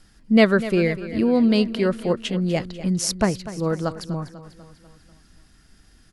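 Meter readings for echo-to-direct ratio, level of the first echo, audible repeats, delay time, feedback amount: −13.0 dB, −14.5 dB, 4, 246 ms, 54%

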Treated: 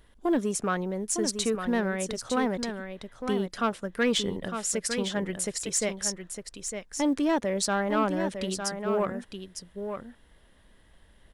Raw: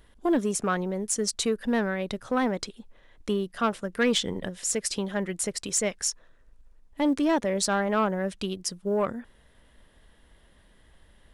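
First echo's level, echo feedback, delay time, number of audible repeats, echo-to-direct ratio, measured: −7.5 dB, repeats not evenly spaced, 906 ms, 1, −7.5 dB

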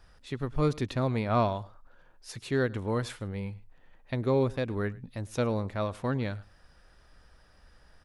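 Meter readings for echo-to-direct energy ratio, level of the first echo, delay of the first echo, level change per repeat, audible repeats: −22.5 dB, −22.5 dB, 107 ms, repeats not evenly spaced, 1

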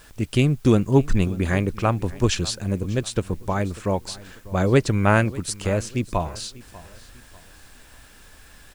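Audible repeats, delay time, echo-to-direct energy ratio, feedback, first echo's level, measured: 2, 594 ms, −19.5 dB, 35%, −20.0 dB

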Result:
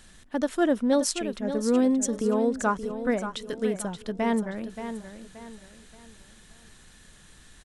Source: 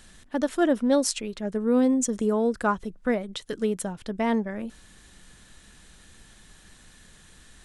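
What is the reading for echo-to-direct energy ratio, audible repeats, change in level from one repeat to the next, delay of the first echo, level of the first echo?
−9.5 dB, 3, −9.0 dB, 577 ms, −10.0 dB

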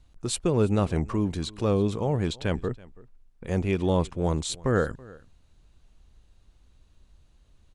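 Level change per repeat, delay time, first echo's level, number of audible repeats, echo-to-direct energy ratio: repeats not evenly spaced, 329 ms, −22.5 dB, 1, −22.5 dB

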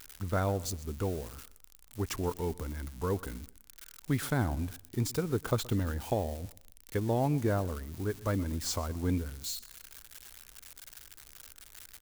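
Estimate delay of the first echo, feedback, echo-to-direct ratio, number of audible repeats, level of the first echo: 124 ms, 36%, −20.5 dB, 2, −21.0 dB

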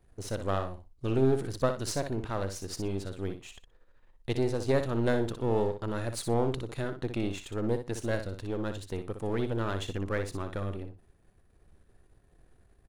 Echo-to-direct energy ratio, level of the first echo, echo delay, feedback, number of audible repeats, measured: −8.5 dB, −8.5 dB, 61 ms, 16%, 2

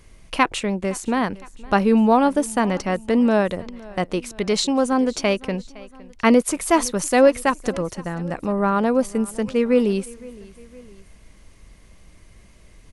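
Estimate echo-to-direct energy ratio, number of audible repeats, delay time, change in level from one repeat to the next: −20.5 dB, 2, 512 ms, −5.0 dB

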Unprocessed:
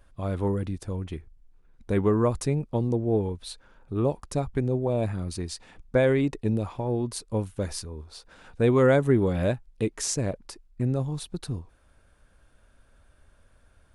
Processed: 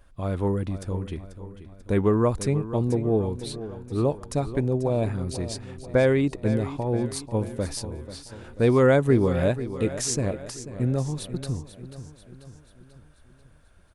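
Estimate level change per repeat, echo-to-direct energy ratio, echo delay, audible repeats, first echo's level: −5.5 dB, −11.5 dB, 489 ms, 4, −13.0 dB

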